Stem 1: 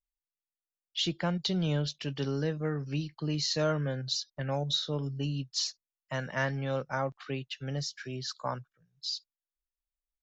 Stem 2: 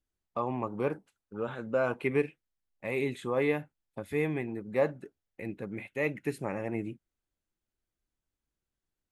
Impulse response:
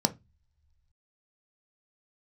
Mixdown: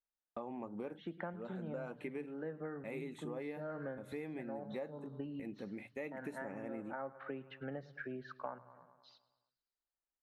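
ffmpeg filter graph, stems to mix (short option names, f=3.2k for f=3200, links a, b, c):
-filter_complex "[0:a]lowpass=f=1.7k:w=0.5412,lowpass=f=1.7k:w=1.3066,aemphasis=mode=production:type=bsi,volume=1dB,asplit=3[a][b][c];[b]volume=-22.5dB[d];[c]volume=-20.5dB[e];[1:a]agate=range=-33dB:threshold=-46dB:ratio=3:detection=peak,volume=-9dB,asplit=3[f][g][h];[g]volume=-17.5dB[i];[h]apad=whole_len=451010[j];[a][j]sidechaincompress=threshold=-53dB:ratio=8:attack=5.5:release=202[k];[2:a]atrim=start_sample=2205[l];[d][i]amix=inputs=2:normalize=0[m];[m][l]afir=irnorm=-1:irlink=0[n];[e]aecho=0:1:106|212|318|424|530|636|742|848|954:1|0.59|0.348|0.205|0.121|0.0715|0.0422|0.0249|0.0147[o];[k][f][n][o]amix=inputs=4:normalize=0,acompressor=threshold=-40dB:ratio=6"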